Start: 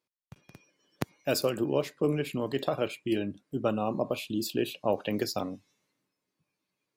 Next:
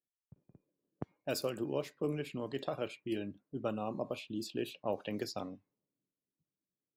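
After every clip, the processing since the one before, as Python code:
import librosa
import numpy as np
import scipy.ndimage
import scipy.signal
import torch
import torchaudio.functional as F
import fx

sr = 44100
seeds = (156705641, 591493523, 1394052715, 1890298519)

y = fx.env_lowpass(x, sr, base_hz=390.0, full_db=-25.5)
y = F.gain(torch.from_numpy(y), -8.0).numpy()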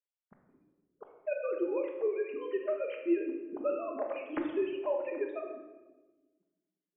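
y = fx.sine_speech(x, sr)
y = fx.room_shoebox(y, sr, seeds[0], volume_m3=760.0, walls='mixed', distance_m=1.3)
y = F.gain(torch.from_numpy(y), 2.0).numpy()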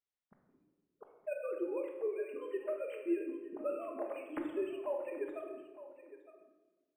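y = x + 10.0 ** (-15.0 / 20.0) * np.pad(x, (int(912 * sr / 1000.0), 0))[:len(x)]
y = np.interp(np.arange(len(y)), np.arange(len(y))[::4], y[::4])
y = F.gain(torch.from_numpy(y), -5.0).numpy()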